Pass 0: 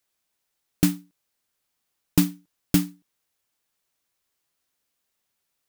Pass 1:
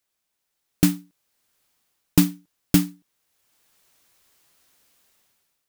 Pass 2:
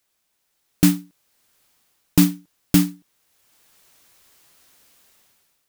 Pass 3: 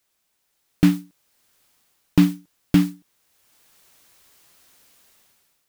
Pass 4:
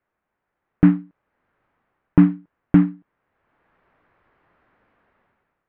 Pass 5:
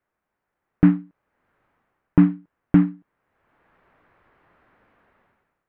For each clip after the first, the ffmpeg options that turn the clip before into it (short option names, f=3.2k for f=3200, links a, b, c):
-af "dynaudnorm=f=180:g=7:m=16dB,volume=-1dB"
-af "alimiter=level_in=7.5dB:limit=-1dB:release=50:level=0:latency=1,volume=-1dB"
-filter_complex "[0:a]acrossover=split=3800[a][b];[b]acompressor=threshold=-36dB:ratio=4:attack=1:release=60[c];[a][c]amix=inputs=2:normalize=0"
-af "lowpass=f=1.8k:w=0.5412,lowpass=f=1.8k:w=1.3066,volume=2.5dB"
-af "dynaudnorm=f=190:g=5:m=4.5dB,volume=-1.5dB"